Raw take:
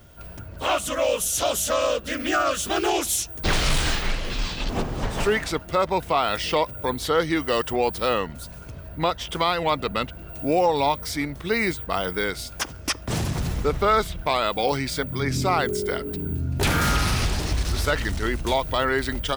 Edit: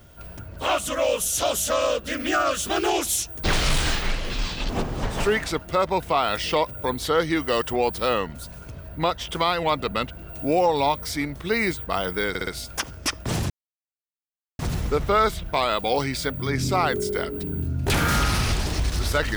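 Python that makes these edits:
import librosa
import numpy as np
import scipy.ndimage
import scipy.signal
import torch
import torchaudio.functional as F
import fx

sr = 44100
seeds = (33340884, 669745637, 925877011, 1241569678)

y = fx.edit(x, sr, fx.stutter(start_s=12.29, slice_s=0.06, count=4),
    fx.insert_silence(at_s=13.32, length_s=1.09), tone=tone)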